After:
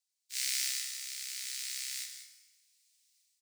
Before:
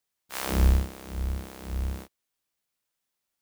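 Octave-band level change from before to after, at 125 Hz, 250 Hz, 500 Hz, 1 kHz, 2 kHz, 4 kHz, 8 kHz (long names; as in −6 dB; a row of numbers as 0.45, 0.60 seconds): below −40 dB, below −40 dB, below −40 dB, −25.0 dB, −2.0 dB, +6.5 dB, +8.5 dB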